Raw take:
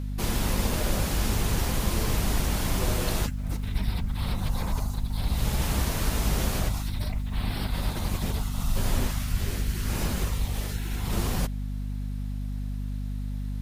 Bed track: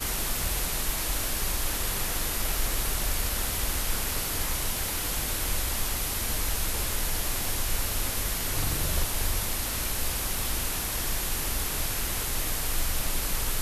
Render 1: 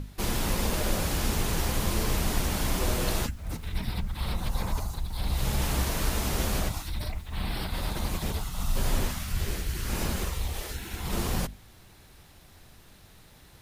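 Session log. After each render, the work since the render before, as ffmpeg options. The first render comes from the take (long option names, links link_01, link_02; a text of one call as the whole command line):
ffmpeg -i in.wav -af "bandreject=frequency=50:width_type=h:width=6,bandreject=frequency=100:width_type=h:width=6,bandreject=frequency=150:width_type=h:width=6,bandreject=frequency=200:width_type=h:width=6,bandreject=frequency=250:width_type=h:width=6" out.wav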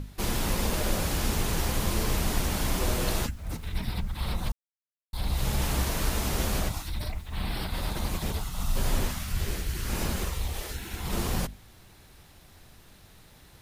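ffmpeg -i in.wav -filter_complex "[0:a]asplit=3[link_01][link_02][link_03];[link_01]atrim=end=4.52,asetpts=PTS-STARTPTS,afade=type=out:start_time=4.516:duration=0.004:curve=hsin[link_04];[link_02]atrim=start=4.52:end=5.13,asetpts=PTS-STARTPTS,volume=0[link_05];[link_03]atrim=start=5.13,asetpts=PTS-STARTPTS,afade=type=in:duration=0.004:curve=hsin[link_06];[link_04][link_05][link_06]concat=n=3:v=0:a=1" out.wav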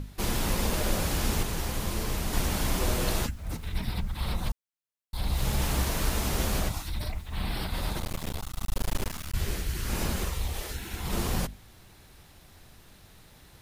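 ffmpeg -i in.wav -filter_complex "[0:a]asettb=1/sr,asplit=3[link_01][link_02][link_03];[link_01]atrim=end=5.334[link_04];[link_02]atrim=start=5.33:end=6.63,asetpts=PTS-STARTPTS,afade=type=in:duration=0.004:curve=qsin,afade=type=out:start_time=1.296:duration=0.004:curve=qsin,acrusher=bits=8:mode=log:mix=0:aa=0.000001[link_05];[link_03]atrim=start=6.626[link_06];[link_04][link_05]acrossfade=duration=0.004:curve1=hsin:curve2=qsin[link_07];[link_07][link_06]acrossfade=duration=0.004:curve1=qsin:curve2=hsin,asettb=1/sr,asplit=3[link_08][link_09][link_10];[link_08]atrim=end=8.004[link_11];[link_09]atrim=start=8:end=9.35,asetpts=PTS-STARTPTS,afade=type=in:duration=0.004:curve=qsin,afade=type=out:start_time=1.346:duration=0.004:curve=qsin,aeval=exprs='max(val(0),0)':channel_layout=same[link_12];[link_10]atrim=start=9.346[link_13];[link_11][link_12]acrossfade=duration=0.004:curve1=hsin:curve2=qsin[link_14];[link_14][link_13]acrossfade=duration=0.004:curve1=qsin:curve2=hsin,asplit=3[link_15][link_16][link_17];[link_15]atrim=end=1.432[link_18];[link_16]atrim=start=1.428:end=2.332,asetpts=PTS-STARTPTS,volume=-3.5dB[link_19];[link_17]atrim=start=2.328[link_20];[link_18][link_19]acrossfade=duration=0.004:curve1=hsin:curve2=hsin[link_21];[link_21][link_20]acrossfade=duration=0.004:curve1=hsin:curve2=hsin" out.wav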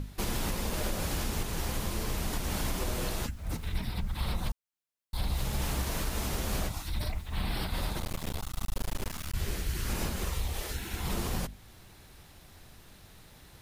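ffmpeg -i in.wav -af "alimiter=limit=-21.5dB:level=0:latency=1:release=302" out.wav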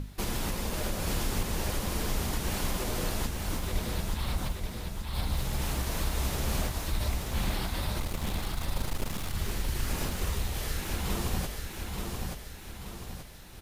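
ffmpeg -i in.wav -af "aecho=1:1:880|1760|2640|3520|4400|5280:0.631|0.303|0.145|0.0698|0.0335|0.0161" out.wav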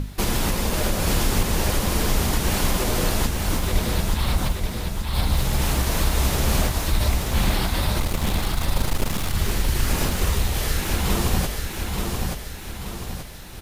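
ffmpeg -i in.wav -af "volume=9.5dB" out.wav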